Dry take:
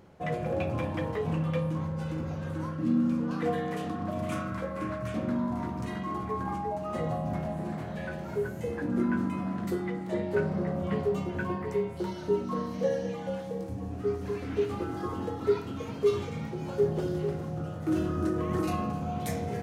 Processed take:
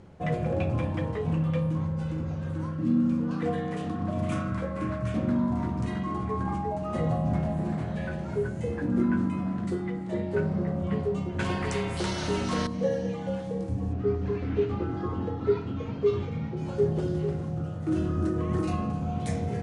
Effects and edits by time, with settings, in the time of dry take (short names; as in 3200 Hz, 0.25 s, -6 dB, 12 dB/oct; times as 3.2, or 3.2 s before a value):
11.39–12.67 spectral compressor 2:1
13.93–16.57 air absorption 140 m
whole clip: Chebyshev low-pass 10000 Hz, order 6; low shelf 220 Hz +9 dB; vocal rider 2 s; gain -1 dB